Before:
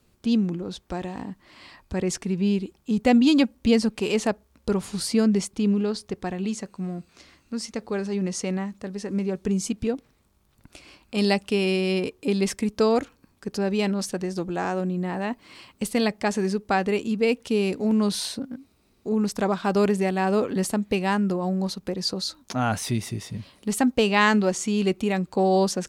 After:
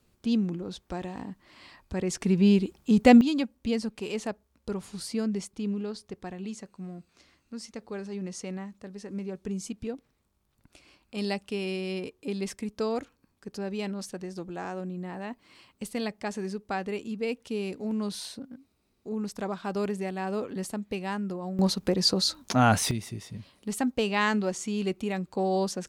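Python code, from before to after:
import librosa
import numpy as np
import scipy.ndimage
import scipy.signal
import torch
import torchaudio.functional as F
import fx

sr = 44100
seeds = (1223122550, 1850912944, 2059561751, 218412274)

y = fx.gain(x, sr, db=fx.steps((0.0, -4.0), (2.21, 2.5), (3.21, -9.0), (21.59, 3.5), (22.91, -6.5)))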